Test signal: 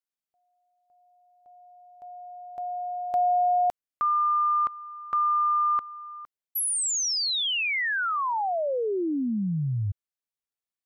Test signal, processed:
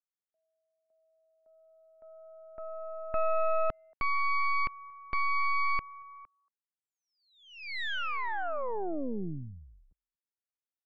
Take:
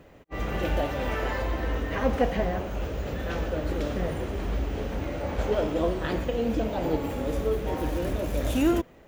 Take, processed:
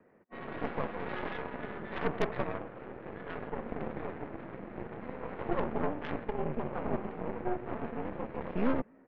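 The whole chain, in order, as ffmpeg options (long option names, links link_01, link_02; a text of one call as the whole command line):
ffmpeg -i in.wav -filter_complex "[0:a]asplit=2[link_01][link_02];[link_02]adelay=230,highpass=300,lowpass=3400,asoftclip=type=hard:threshold=-22dB,volume=-26dB[link_03];[link_01][link_03]amix=inputs=2:normalize=0,highpass=frequency=220:width_type=q:width=0.5412,highpass=frequency=220:width_type=q:width=1.307,lowpass=frequency=2200:width_type=q:width=0.5176,lowpass=frequency=2200:width_type=q:width=0.7071,lowpass=frequency=2200:width_type=q:width=1.932,afreqshift=-74,aeval=exprs='0.266*(cos(1*acos(clip(val(0)/0.266,-1,1)))-cos(1*PI/2))+0.0841*(cos(6*acos(clip(val(0)/0.266,-1,1)))-cos(6*PI/2))+0.00335*(cos(7*acos(clip(val(0)/0.266,-1,1)))-cos(7*PI/2))':channel_layout=same,volume=-8.5dB" out.wav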